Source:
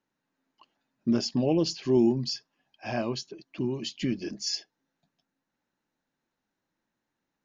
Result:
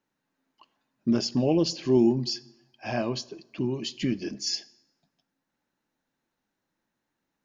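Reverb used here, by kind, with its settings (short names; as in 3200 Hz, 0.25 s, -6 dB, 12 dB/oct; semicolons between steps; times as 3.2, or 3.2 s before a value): plate-style reverb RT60 1 s, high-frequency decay 0.75×, DRR 18 dB; gain +1.5 dB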